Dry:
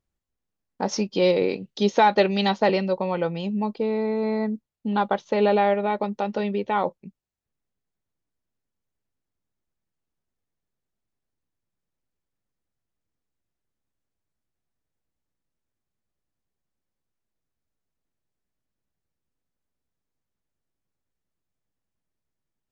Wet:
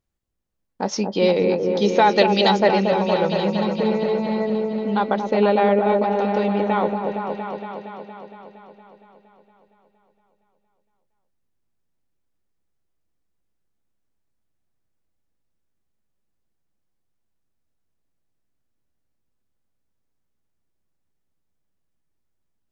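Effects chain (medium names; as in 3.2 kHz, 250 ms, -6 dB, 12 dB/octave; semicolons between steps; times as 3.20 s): 2.11–2.60 s: treble shelf 3.9 kHz +11.5 dB; on a send: delay with an opening low-pass 232 ms, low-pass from 750 Hz, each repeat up 1 oct, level -3 dB; on the sum: trim +1.5 dB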